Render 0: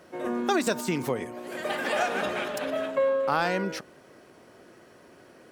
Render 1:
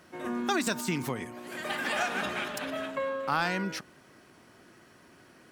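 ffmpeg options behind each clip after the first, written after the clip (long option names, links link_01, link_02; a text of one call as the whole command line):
ffmpeg -i in.wav -af "equalizer=frequency=510:width_type=o:width=1.1:gain=-9.5" out.wav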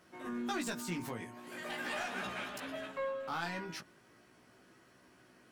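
ffmpeg -i in.wav -af "asoftclip=type=tanh:threshold=-24dB,flanger=delay=15.5:depth=2.2:speed=0.41,volume=-3.5dB" out.wav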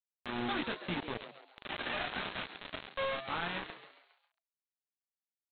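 ffmpeg -i in.wav -filter_complex "[0:a]aresample=8000,acrusher=bits=5:mix=0:aa=0.000001,aresample=44100,acompressor=mode=upward:threshold=-54dB:ratio=2.5,asplit=6[link_01][link_02][link_03][link_04][link_05][link_06];[link_02]adelay=136,afreqshift=130,volume=-11.5dB[link_07];[link_03]adelay=272,afreqshift=260,volume=-18.4dB[link_08];[link_04]adelay=408,afreqshift=390,volume=-25.4dB[link_09];[link_05]adelay=544,afreqshift=520,volume=-32.3dB[link_10];[link_06]adelay=680,afreqshift=650,volume=-39.2dB[link_11];[link_01][link_07][link_08][link_09][link_10][link_11]amix=inputs=6:normalize=0" out.wav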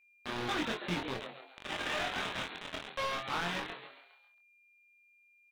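ffmpeg -i in.wav -filter_complex "[0:a]aeval=exprs='val(0)+0.000355*sin(2*PI*2400*n/s)':channel_layout=same,volume=33dB,asoftclip=hard,volume=-33dB,asplit=2[link_01][link_02];[link_02]adelay=23,volume=-4.5dB[link_03];[link_01][link_03]amix=inputs=2:normalize=0,volume=3dB" out.wav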